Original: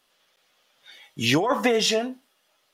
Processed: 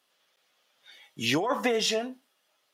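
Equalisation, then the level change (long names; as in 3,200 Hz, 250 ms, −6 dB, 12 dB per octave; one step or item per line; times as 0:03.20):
high-pass filter 150 Hz 6 dB per octave
−4.5 dB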